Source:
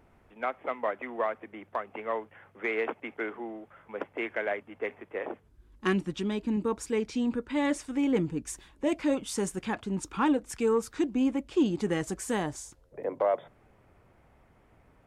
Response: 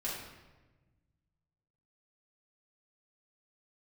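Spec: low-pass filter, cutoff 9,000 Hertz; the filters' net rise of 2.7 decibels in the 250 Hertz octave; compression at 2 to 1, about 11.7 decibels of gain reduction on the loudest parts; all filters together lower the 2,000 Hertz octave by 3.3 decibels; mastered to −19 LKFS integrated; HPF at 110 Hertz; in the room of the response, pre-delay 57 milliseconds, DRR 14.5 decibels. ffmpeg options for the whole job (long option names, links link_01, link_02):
-filter_complex "[0:a]highpass=110,lowpass=9000,equalizer=frequency=250:width_type=o:gain=3.5,equalizer=frequency=2000:width_type=o:gain=-4,acompressor=threshold=-41dB:ratio=2,asplit=2[link_01][link_02];[1:a]atrim=start_sample=2205,adelay=57[link_03];[link_02][link_03]afir=irnorm=-1:irlink=0,volume=-17.5dB[link_04];[link_01][link_04]amix=inputs=2:normalize=0,volume=20dB"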